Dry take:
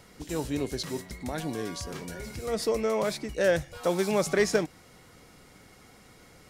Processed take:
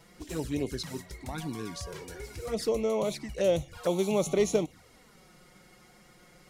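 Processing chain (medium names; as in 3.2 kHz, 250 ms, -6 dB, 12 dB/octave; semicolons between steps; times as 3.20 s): touch-sensitive flanger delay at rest 6.6 ms, full sweep at -25 dBFS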